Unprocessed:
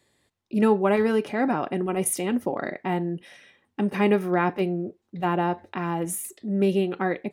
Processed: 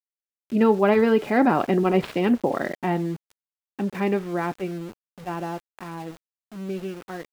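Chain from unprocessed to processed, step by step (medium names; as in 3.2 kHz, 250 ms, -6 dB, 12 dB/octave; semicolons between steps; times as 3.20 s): median filter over 9 samples; Doppler pass-by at 1.81 s, 9 m/s, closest 7.9 m; resampled via 11.025 kHz; small samples zeroed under -45 dBFS; trim +6 dB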